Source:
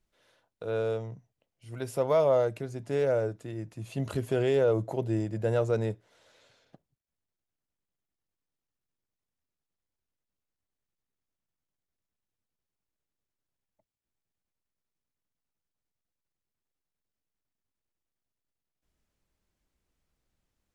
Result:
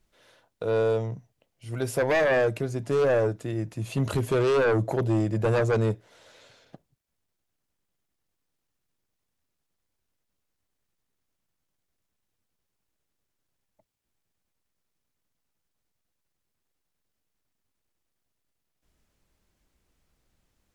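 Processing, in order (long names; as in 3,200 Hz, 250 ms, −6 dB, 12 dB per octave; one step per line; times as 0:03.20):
sine wavefolder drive 7 dB, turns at −15.5 dBFS
level −3 dB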